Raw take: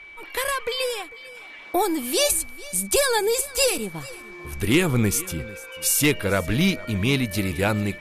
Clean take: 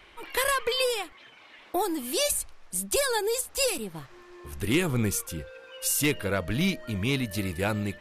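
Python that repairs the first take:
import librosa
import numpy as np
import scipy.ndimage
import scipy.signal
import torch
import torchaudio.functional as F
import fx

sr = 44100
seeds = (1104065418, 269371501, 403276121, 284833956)

y = fx.notch(x, sr, hz=2300.0, q=30.0)
y = fx.fix_echo_inverse(y, sr, delay_ms=447, level_db=-20.0)
y = fx.fix_level(y, sr, at_s=1.35, step_db=-5.5)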